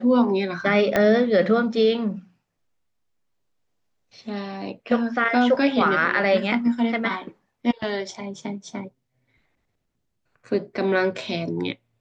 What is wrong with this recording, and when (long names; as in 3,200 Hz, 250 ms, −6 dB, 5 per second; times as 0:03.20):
0:00.96: click −7 dBFS